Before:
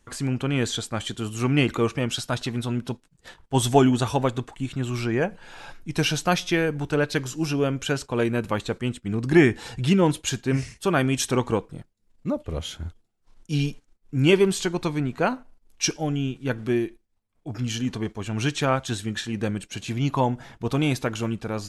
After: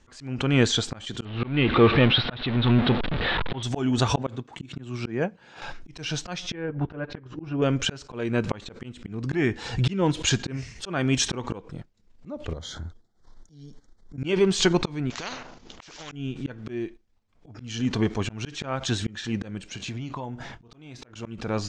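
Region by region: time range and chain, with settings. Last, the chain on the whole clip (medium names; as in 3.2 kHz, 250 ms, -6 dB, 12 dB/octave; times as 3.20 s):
1.25–3.63 s: jump at every zero crossing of -23.5 dBFS + elliptic low-pass 3.8 kHz, stop band 50 dB + band-stop 1 kHz, Q 26
4.18–5.62 s: high-pass 160 Hz + bass shelf 240 Hz +10 dB + upward expansion, over -38 dBFS
6.53–7.62 s: low-pass 1.7 kHz + transient shaper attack +3 dB, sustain -8 dB + comb of notches 220 Hz
12.53–14.18 s: Butterworth band-stop 2.6 kHz, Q 1.9 + compression, threshold -37 dBFS
15.10–16.12 s: compression 16:1, threshold -27 dBFS + careless resampling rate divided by 3×, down none, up filtered + spectrum-flattening compressor 4:1
19.68–21.15 s: doubling 25 ms -13.5 dB + compression 10:1, threshold -35 dBFS
whole clip: low-pass 6.7 kHz 24 dB/octave; slow attack 418 ms; swell ahead of each attack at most 150 dB/s; trim +5 dB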